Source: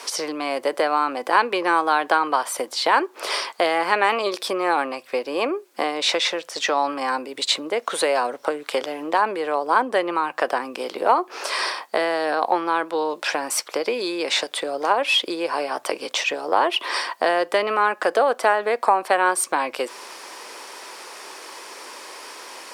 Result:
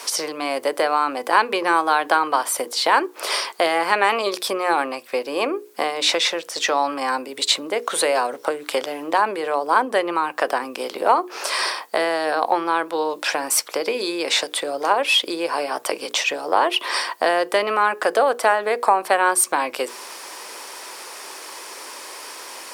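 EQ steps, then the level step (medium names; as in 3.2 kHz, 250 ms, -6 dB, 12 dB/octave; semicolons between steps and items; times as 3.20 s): treble shelf 9.4 kHz +10 dB; hum notches 60/120/180/240/300/360/420/480 Hz; +1.0 dB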